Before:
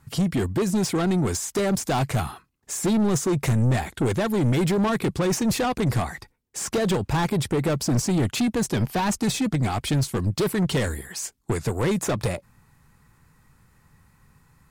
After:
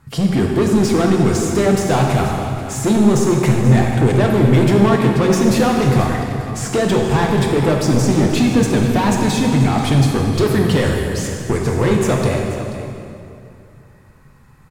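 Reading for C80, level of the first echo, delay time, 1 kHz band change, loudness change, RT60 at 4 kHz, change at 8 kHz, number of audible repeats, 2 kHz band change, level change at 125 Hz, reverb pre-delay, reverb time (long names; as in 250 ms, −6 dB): 2.5 dB, −13.0 dB, 484 ms, +8.5 dB, +8.5 dB, 2.1 s, +3.0 dB, 1, +8.0 dB, +9.0 dB, 9 ms, 2.5 s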